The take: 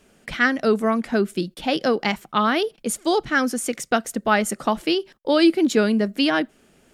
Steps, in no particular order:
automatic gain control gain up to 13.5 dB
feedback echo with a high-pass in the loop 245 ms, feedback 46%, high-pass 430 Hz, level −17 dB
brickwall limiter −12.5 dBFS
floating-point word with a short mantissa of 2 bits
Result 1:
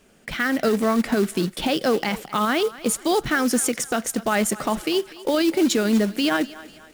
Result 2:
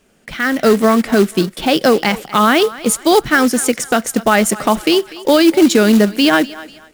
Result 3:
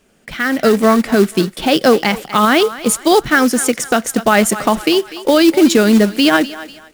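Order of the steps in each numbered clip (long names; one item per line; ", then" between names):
floating-point word with a short mantissa, then automatic gain control, then brickwall limiter, then feedback echo with a high-pass in the loop
brickwall limiter, then feedback echo with a high-pass in the loop, then automatic gain control, then floating-point word with a short mantissa
floating-point word with a short mantissa, then feedback echo with a high-pass in the loop, then brickwall limiter, then automatic gain control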